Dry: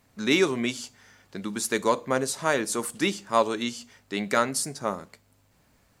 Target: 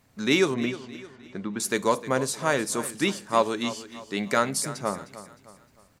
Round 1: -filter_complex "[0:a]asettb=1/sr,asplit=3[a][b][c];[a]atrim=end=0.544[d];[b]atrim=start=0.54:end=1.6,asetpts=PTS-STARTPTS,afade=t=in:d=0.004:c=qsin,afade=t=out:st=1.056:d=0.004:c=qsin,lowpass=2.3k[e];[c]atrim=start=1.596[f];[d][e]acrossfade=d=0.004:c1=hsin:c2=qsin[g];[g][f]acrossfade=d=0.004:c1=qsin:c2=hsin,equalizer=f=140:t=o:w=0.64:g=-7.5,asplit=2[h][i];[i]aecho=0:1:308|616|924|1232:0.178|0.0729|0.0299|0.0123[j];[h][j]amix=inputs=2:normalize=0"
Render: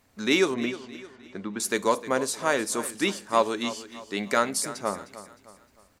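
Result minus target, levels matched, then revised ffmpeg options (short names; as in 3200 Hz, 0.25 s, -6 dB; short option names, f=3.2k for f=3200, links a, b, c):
125 Hz band -6.5 dB
-filter_complex "[0:a]asettb=1/sr,asplit=3[a][b][c];[a]atrim=end=0.544[d];[b]atrim=start=0.54:end=1.6,asetpts=PTS-STARTPTS,afade=t=in:d=0.004:c=qsin,afade=t=out:st=1.056:d=0.004:c=qsin,lowpass=2.3k[e];[c]atrim=start=1.596[f];[d][e]acrossfade=d=0.004:c1=hsin:c2=qsin[g];[g][f]acrossfade=d=0.004:c1=qsin:c2=hsin,equalizer=f=140:t=o:w=0.64:g=3.5,asplit=2[h][i];[i]aecho=0:1:308|616|924|1232:0.178|0.0729|0.0299|0.0123[j];[h][j]amix=inputs=2:normalize=0"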